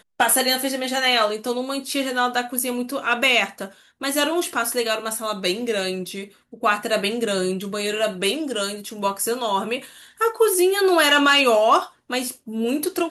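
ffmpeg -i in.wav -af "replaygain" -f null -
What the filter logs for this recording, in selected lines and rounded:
track_gain = -0.3 dB
track_peak = 0.399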